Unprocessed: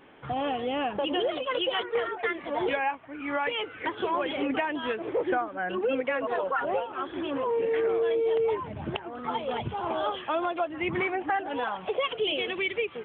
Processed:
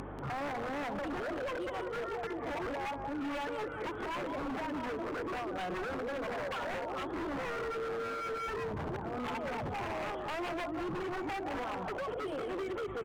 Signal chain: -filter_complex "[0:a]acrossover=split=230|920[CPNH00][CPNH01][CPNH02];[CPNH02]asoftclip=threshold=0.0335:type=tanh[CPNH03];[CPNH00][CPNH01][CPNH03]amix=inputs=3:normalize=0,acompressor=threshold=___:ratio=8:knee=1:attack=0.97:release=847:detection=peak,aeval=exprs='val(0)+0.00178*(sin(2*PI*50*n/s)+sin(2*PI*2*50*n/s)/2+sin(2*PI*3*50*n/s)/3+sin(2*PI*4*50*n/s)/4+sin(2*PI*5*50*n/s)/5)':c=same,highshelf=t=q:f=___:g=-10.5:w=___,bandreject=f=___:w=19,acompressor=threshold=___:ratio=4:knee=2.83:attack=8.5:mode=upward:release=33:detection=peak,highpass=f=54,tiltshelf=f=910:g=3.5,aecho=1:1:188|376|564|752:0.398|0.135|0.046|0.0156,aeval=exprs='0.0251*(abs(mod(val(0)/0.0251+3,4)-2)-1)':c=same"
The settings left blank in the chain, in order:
0.0355, 1900, 1.5, 1600, 0.00891